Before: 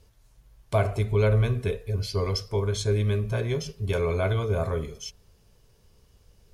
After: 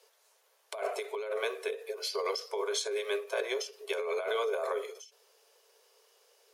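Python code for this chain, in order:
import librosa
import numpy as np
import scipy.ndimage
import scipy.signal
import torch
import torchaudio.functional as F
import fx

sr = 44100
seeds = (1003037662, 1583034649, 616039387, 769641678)

y = scipy.signal.sosfilt(scipy.signal.butter(12, 410.0, 'highpass', fs=sr, output='sos'), x)
y = fx.over_compress(y, sr, threshold_db=-32.0, ratio=-1.0)
y = fx.end_taper(y, sr, db_per_s=160.0)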